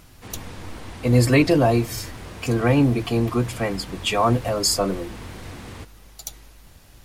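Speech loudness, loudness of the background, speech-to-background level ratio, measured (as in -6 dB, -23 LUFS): -21.0 LUFS, -38.5 LUFS, 17.5 dB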